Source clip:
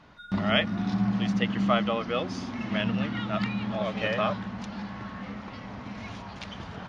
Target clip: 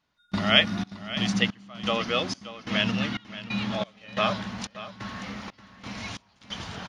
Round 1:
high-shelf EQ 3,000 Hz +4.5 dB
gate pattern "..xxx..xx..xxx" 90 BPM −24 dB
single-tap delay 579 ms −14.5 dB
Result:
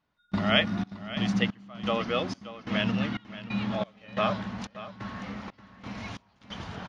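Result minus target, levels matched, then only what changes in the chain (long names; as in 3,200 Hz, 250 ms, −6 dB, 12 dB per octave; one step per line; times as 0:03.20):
8,000 Hz band −7.0 dB
change: high-shelf EQ 3,000 Hz +16.5 dB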